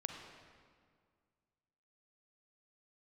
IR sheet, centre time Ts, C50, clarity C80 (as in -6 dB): 57 ms, 3.5 dB, 5.0 dB